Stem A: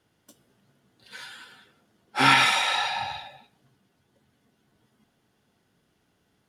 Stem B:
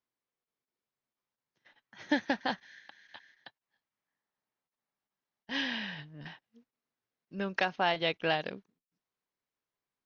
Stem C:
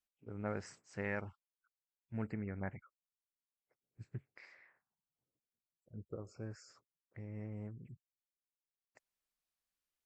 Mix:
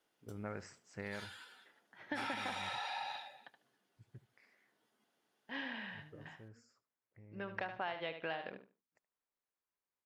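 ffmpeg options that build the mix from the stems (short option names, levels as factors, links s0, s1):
-filter_complex "[0:a]highpass=350,acompressor=threshold=0.0562:ratio=6,volume=0.376[s0];[1:a]lowpass=2100,lowshelf=f=360:g=-8,volume=0.668,asplit=2[s1][s2];[s2]volume=0.299[s3];[2:a]volume=0.891,afade=t=out:st=0.83:d=0.59:silence=0.316228,asplit=2[s4][s5];[s5]volume=0.119[s6];[s3][s6]amix=inputs=2:normalize=0,aecho=0:1:74|148|222:1|0.19|0.0361[s7];[s0][s1][s4][s7]amix=inputs=4:normalize=0,acrossover=split=1200|5000[s8][s9][s10];[s8]acompressor=threshold=0.01:ratio=4[s11];[s9]acompressor=threshold=0.00708:ratio=4[s12];[s10]acompressor=threshold=0.001:ratio=4[s13];[s11][s12][s13]amix=inputs=3:normalize=0"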